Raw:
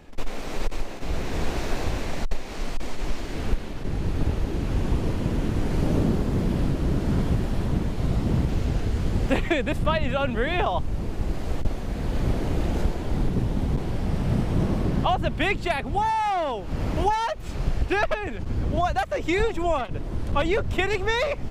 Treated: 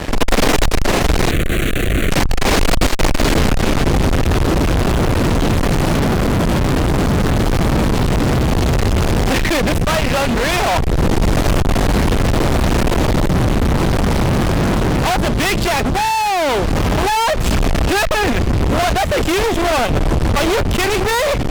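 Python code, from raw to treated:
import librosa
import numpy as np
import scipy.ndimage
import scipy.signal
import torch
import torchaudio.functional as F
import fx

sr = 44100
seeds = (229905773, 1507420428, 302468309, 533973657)

y = fx.cheby_harmonics(x, sr, harmonics=(5,), levels_db=(-13,), full_scale_db=-10.0)
y = fx.fuzz(y, sr, gain_db=34.0, gate_db=-43.0)
y = fx.rider(y, sr, range_db=10, speed_s=0.5)
y = fx.fixed_phaser(y, sr, hz=2200.0, stages=4, at=(1.3, 2.1), fade=0.02)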